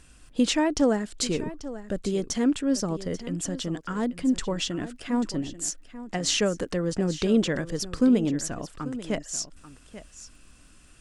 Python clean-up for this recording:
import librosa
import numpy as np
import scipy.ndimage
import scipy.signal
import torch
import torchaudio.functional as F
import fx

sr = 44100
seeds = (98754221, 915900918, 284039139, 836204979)

y = fx.fix_declick_ar(x, sr, threshold=6.5)
y = fx.fix_echo_inverse(y, sr, delay_ms=839, level_db=-14.5)